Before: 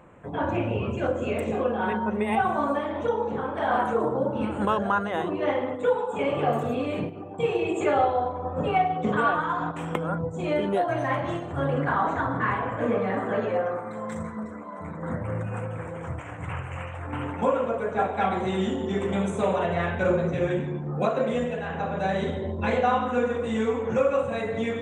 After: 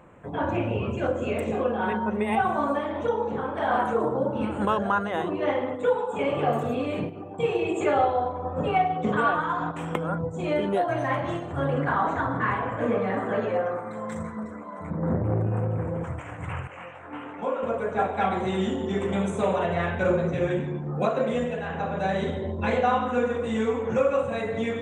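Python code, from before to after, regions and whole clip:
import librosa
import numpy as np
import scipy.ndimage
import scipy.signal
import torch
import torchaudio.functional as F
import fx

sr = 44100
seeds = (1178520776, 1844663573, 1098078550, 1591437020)

y = fx.chain(x, sr, fx.tilt_shelf(db=9.0, hz=1100.0),
    fx.transformer_sat(knee_hz=350.0), at=(14.9, 16.04))
y = fx.chain(y, sr, fx.bandpass_edges(low_hz=230.0, high_hz=5700.0),
    fx.detune_double(cents=24), at=(16.67, 17.63))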